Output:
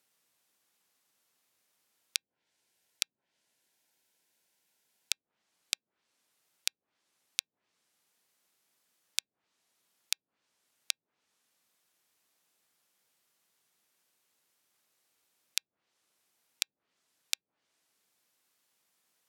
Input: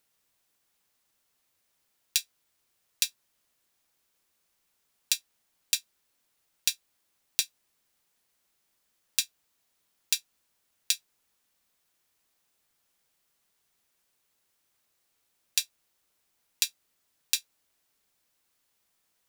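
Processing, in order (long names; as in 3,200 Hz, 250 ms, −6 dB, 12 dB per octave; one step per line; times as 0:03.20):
high-pass filter 140 Hz 12 dB per octave
treble cut that deepens with the level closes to 330 Hz, closed at −30 dBFS
0:02.17–0:05.13: Butterworth band-reject 1,200 Hz, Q 5.2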